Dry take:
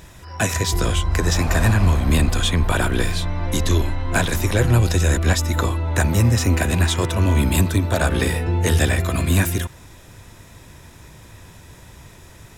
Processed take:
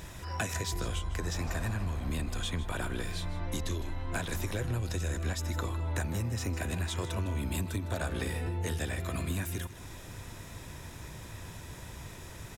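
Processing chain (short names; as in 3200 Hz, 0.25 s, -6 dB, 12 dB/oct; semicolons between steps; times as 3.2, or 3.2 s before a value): compressor, threshold -30 dBFS, peak gain reduction 16.5 dB; on a send: echo 0.156 s -15 dB; on the sum: gain -1.5 dB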